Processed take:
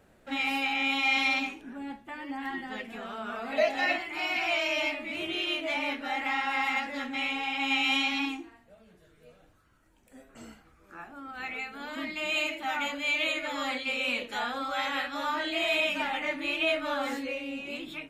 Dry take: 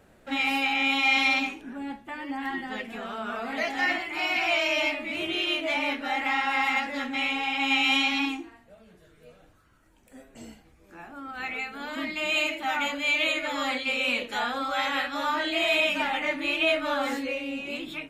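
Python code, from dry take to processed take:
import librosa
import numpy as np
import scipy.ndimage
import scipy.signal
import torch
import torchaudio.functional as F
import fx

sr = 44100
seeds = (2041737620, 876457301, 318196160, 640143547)

y = fx.small_body(x, sr, hz=(610.0, 2600.0, 3900.0), ring_ms=45, db=15, at=(3.51, 3.97))
y = fx.peak_eq(y, sr, hz=1300.0, db=13.0, octaves=0.59, at=(10.29, 11.04))
y = F.gain(torch.from_numpy(y), -3.5).numpy()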